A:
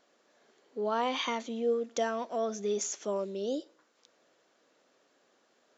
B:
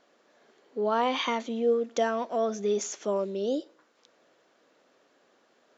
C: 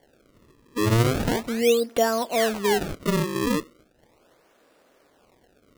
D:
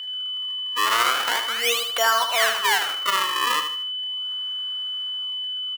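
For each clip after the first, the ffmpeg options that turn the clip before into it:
-af "highshelf=f=6.4k:g=-10,volume=4.5dB"
-af "acrusher=samples=34:mix=1:aa=0.000001:lfo=1:lforange=54.4:lforate=0.37,volume=5dB"
-filter_complex "[0:a]aeval=exprs='val(0)+0.0158*sin(2*PI*3000*n/s)':c=same,highpass=f=1.2k:t=q:w=2.2,asplit=2[a][b];[b]aecho=0:1:76|152|228|304:0.398|0.147|0.0545|0.0202[c];[a][c]amix=inputs=2:normalize=0,volume=4.5dB"

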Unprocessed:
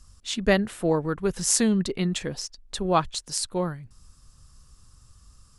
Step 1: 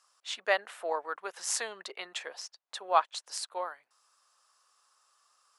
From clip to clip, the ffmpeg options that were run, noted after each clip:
-af "highpass=f=660:w=0.5412,highpass=f=660:w=1.3066,highshelf=f=3.7k:g=-12"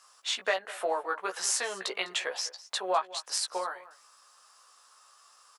-filter_complex "[0:a]acompressor=threshold=-38dB:ratio=3,asplit=2[a][b];[b]adelay=16,volume=-4dB[c];[a][c]amix=inputs=2:normalize=0,aecho=1:1:203:0.126,volume=8.5dB"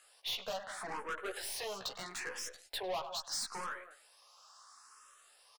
-filter_complex "[0:a]asplit=2[a][b];[b]adelay=100,highpass=300,lowpass=3.4k,asoftclip=type=hard:threshold=-22dB,volume=-19dB[c];[a][c]amix=inputs=2:normalize=0,aeval=exprs='(tanh(56.2*val(0)+0.25)-tanh(0.25))/56.2':c=same,asplit=2[d][e];[e]afreqshift=0.76[f];[d][f]amix=inputs=2:normalize=1,volume=2dB"

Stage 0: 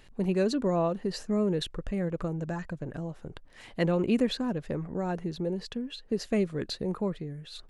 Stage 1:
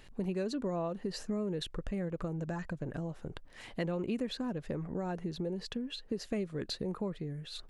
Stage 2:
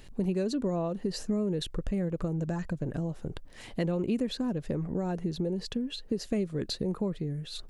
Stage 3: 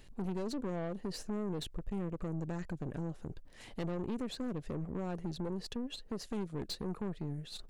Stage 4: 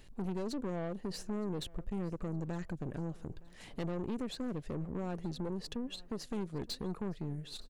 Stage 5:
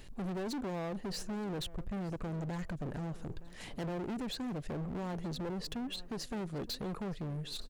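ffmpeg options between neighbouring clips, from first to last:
-af "acompressor=threshold=-34dB:ratio=3"
-af "equalizer=f=1.5k:t=o:w=2.7:g=-6.5,volume=6.5dB"
-af "aeval=exprs='(tanh(35.5*val(0)+0.65)-tanh(0.65))/35.5':c=same,volume=-2.5dB"
-af "aecho=1:1:916|1832:0.0708|0.0212"
-af "asoftclip=type=hard:threshold=-39.5dB,volume=5dB"

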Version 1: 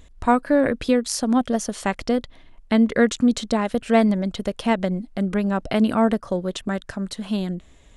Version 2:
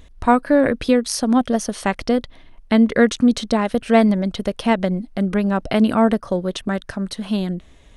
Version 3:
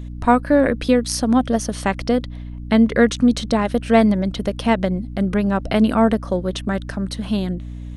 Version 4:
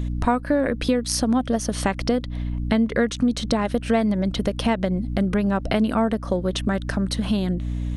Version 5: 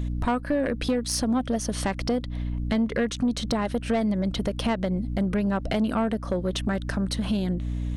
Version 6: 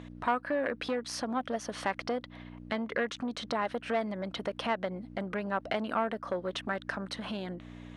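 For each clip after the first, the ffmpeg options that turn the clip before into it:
-af "bandreject=f=7.3k:w=5.7,volume=3dB"
-af "aeval=exprs='val(0)+0.0316*(sin(2*PI*60*n/s)+sin(2*PI*2*60*n/s)/2+sin(2*PI*3*60*n/s)/3+sin(2*PI*4*60*n/s)/4+sin(2*PI*5*60*n/s)/5)':c=same"
-af "acompressor=threshold=-27dB:ratio=3,volume=6dB"
-af "asoftclip=type=tanh:threshold=-14.5dB,volume=-2dB"
-af "bandpass=f=1.3k:t=q:w=0.69:csg=0"

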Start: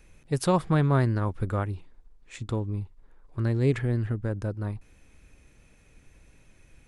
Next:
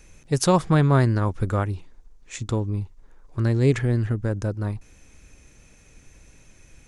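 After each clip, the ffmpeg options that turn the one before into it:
-af "equalizer=f=6.3k:t=o:w=0.68:g=9,volume=4.5dB"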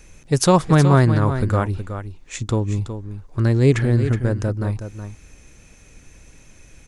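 -af "aecho=1:1:370:0.316,volume=4dB"

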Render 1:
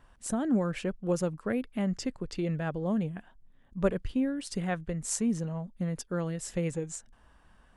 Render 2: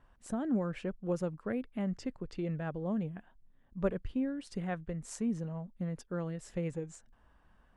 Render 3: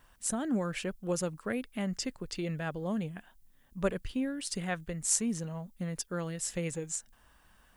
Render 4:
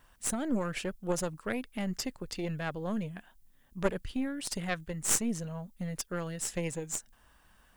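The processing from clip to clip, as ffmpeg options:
-af "highshelf=f=4.1k:g=-11.5,volume=-4.5dB"
-af "crystalizer=i=7.5:c=0"
-af "aeval=exprs='0.335*(cos(1*acos(clip(val(0)/0.335,-1,1)))-cos(1*PI/2))+0.0596*(cos(6*acos(clip(val(0)/0.335,-1,1)))-cos(6*PI/2))':c=same"

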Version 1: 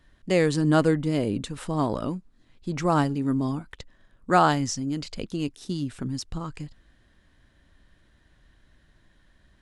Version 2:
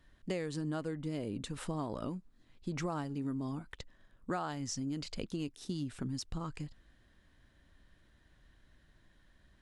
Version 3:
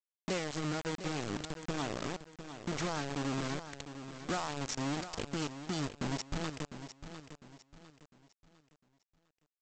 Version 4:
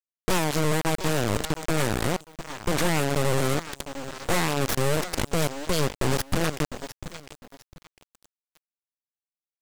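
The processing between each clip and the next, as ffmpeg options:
-af "acompressor=threshold=-28dB:ratio=12,volume=-5dB"
-af "aresample=16000,acrusher=bits=5:mix=0:aa=0.000001,aresample=44100,aecho=1:1:703|1406|2109|2812:0.282|0.101|0.0365|0.0131"
-af "aeval=exprs='0.0794*(cos(1*acos(clip(val(0)/0.0794,-1,1)))-cos(1*PI/2))+0.0158*(cos(3*acos(clip(val(0)/0.0794,-1,1)))-cos(3*PI/2))+0.0158*(cos(7*acos(clip(val(0)/0.0794,-1,1)))-cos(7*PI/2))+0.0251*(cos(8*acos(clip(val(0)/0.0794,-1,1)))-cos(8*PI/2))':c=same,acrusher=bits=8:mix=0:aa=0.000001,volume=8.5dB"

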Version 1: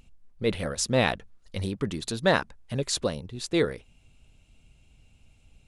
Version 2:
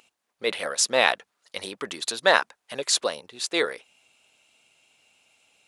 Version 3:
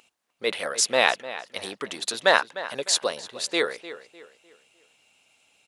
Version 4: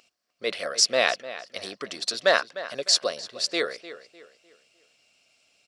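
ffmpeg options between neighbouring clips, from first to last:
-af "highpass=650,volume=6.5dB"
-filter_complex "[0:a]asplit=2[a][b];[b]adelay=302,lowpass=f=3.7k:p=1,volume=-14dB,asplit=2[c][d];[d]adelay=302,lowpass=f=3.7k:p=1,volume=0.37,asplit=2[e][f];[f]adelay=302,lowpass=f=3.7k:p=1,volume=0.37,asplit=2[g][h];[h]adelay=302,lowpass=f=3.7k:p=1,volume=0.37[i];[a][c][e][g][i]amix=inputs=5:normalize=0"
-af "superequalizer=8b=1.41:9b=0.447:14b=2.51:16b=0.562,volume=-2.5dB"

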